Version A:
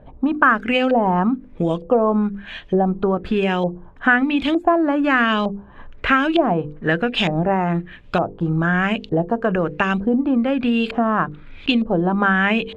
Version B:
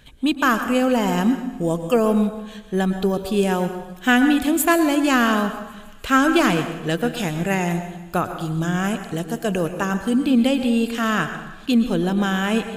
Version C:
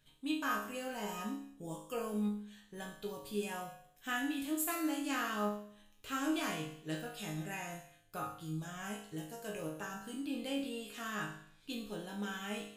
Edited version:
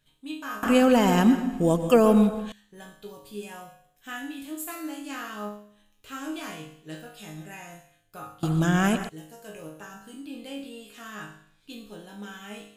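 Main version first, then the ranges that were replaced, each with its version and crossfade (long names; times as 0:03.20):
C
0:00.63–0:02.52: punch in from B
0:08.43–0:09.09: punch in from B
not used: A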